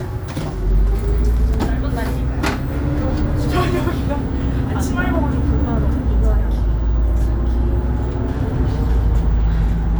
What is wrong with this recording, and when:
0:01.54: drop-out 2.8 ms
0:08.40: drop-out 2.1 ms

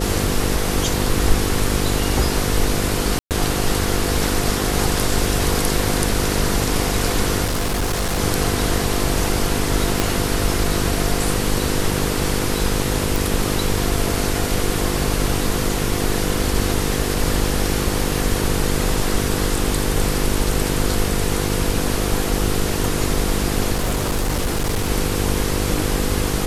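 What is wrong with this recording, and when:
mains buzz 50 Hz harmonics 10 −24 dBFS
0:03.19–0:03.31: drop-out 118 ms
0:07.44–0:08.19: clipping −17 dBFS
0:10.00: click −2 dBFS
0:13.16: click
0:23.74–0:24.90: clipping −16 dBFS

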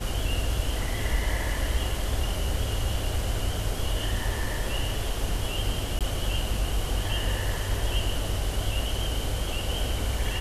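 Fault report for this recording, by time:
0:05.99–0:06.01: drop-out 17 ms

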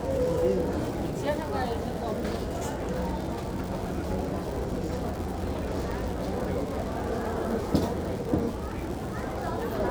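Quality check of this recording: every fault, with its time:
surface crackle 140 per second −33 dBFS
0:05.91–0:05.92: drop-out 5.6 ms

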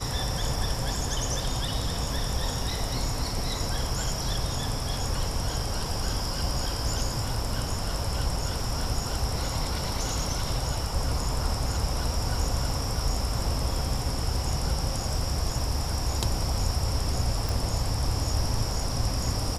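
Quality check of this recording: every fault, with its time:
0:17.49: click

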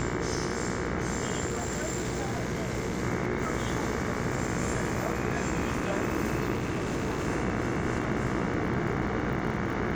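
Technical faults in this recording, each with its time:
mains buzz 60 Hz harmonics 38 −35 dBFS
surface crackle 34 per second −37 dBFS
0:01.46–0:03.04: clipping −26 dBFS
0:06.53–0:07.27: clipping −25.5 dBFS

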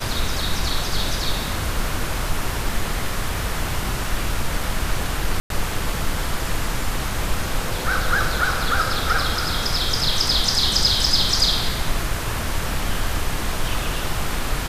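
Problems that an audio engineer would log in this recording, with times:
0:05.40–0:05.50: drop-out 102 ms
0:11.06: drop-out 3.7 ms

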